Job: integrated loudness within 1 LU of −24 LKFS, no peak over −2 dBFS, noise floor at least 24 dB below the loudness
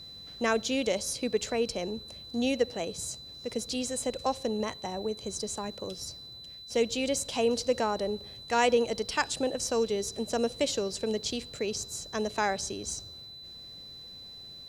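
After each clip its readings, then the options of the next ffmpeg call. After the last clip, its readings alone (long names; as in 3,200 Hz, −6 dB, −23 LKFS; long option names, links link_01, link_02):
interfering tone 4,000 Hz; level of the tone −44 dBFS; integrated loudness −31.0 LKFS; sample peak −11.5 dBFS; target loudness −24.0 LKFS
→ -af "bandreject=frequency=4000:width=30"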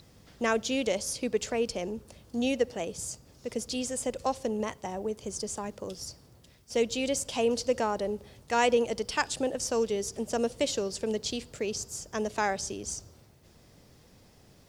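interfering tone none found; integrated loudness −31.0 LKFS; sample peak −11.5 dBFS; target loudness −24.0 LKFS
→ -af "volume=7dB"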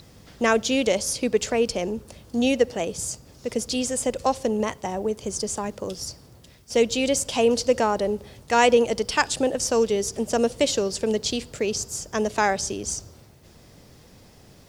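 integrated loudness −24.0 LKFS; sample peak −4.5 dBFS; background noise floor −51 dBFS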